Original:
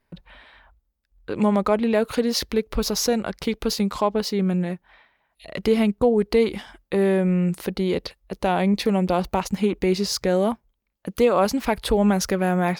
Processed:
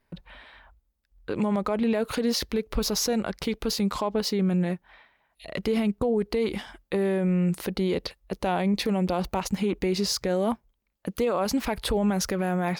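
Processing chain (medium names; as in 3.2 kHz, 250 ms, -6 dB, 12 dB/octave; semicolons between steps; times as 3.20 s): peak limiter -17 dBFS, peak gain reduction 9 dB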